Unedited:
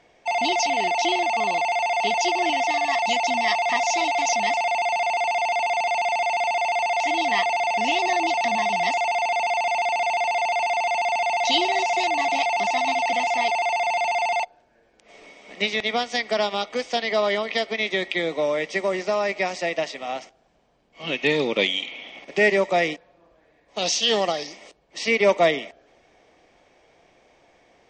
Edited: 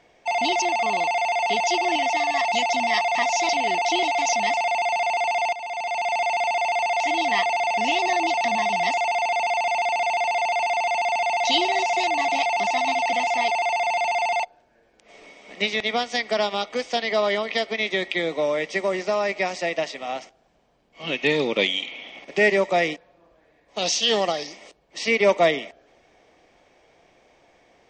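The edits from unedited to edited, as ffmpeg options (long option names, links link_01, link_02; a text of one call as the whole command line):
ffmpeg -i in.wav -filter_complex "[0:a]asplit=5[link_01][link_02][link_03][link_04][link_05];[link_01]atrim=end=0.622[link_06];[link_02]atrim=start=1.158:end=4.032[link_07];[link_03]atrim=start=0.618:end=1.162[link_08];[link_04]atrim=start=4.028:end=5.53,asetpts=PTS-STARTPTS,afade=type=out:start_time=1.498:duration=0.004:curve=hsin:silence=0.211349[link_09];[link_05]atrim=start=5.53,asetpts=PTS-STARTPTS,afade=type=in:duration=0.65:silence=0.211349[link_10];[link_06][link_07]acrossfade=duration=0.004:curve1=hsin:curve2=hsin[link_11];[link_11][link_08]acrossfade=duration=0.004:curve1=hsin:curve2=hsin[link_12];[link_09][link_10]concat=n=2:v=0:a=1[link_13];[link_12][link_13]acrossfade=duration=0.004:curve1=hsin:curve2=hsin" out.wav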